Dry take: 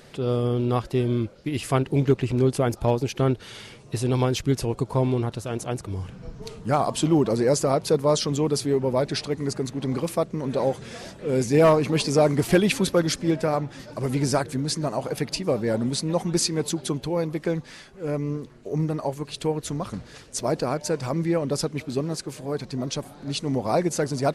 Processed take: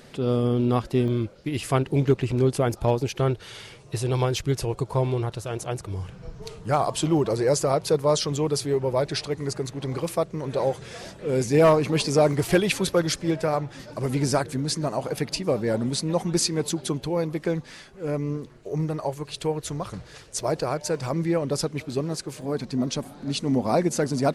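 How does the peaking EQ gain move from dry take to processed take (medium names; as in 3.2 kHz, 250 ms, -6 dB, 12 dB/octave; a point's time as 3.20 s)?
peaking EQ 240 Hz 0.41 oct
+4 dB
from 1.08 s -2.5 dB
from 3.07 s -11 dB
from 10.98 s -4 dB
from 12.33 s -11.5 dB
from 13.75 s -1.5 dB
from 18.57 s -12 dB
from 20.95 s -3.5 dB
from 22.42 s +6.5 dB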